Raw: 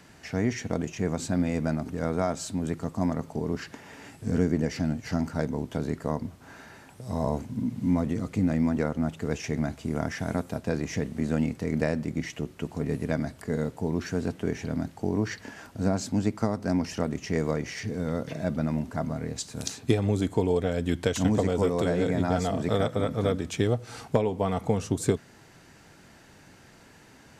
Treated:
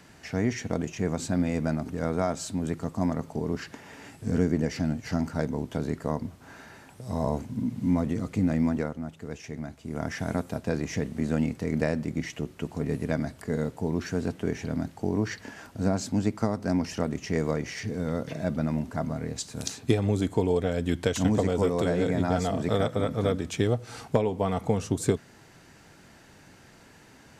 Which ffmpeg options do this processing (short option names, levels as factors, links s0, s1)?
-filter_complex "[0:a]asplit=3[s0][s1][s2];[s0]atrim=end=9,asetpts=PTS-STARTPTS,afade=t=out:st=8.69:d=0.31:silence=0.398107[s3];[s1]atrim=start=9:end=9.83,asetpts=PTS-STARTPTS,volume=0.398[s4];[s2]atrim=start=9.83,asetpts=PTS-STARTPTS,afade=t=in:d=0.31:silence=0.398107[s5];[s3][s4][s5]concat=n=3:v=0:a=1"